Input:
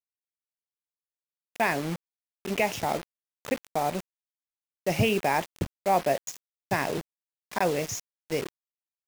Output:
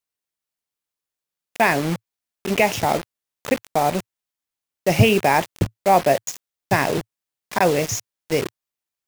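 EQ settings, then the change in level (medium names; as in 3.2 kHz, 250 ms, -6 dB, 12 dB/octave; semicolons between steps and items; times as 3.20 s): dynamic bell 110 Hz, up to +5 dB, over -50 dBFS, Q 3.7; +8.0 dB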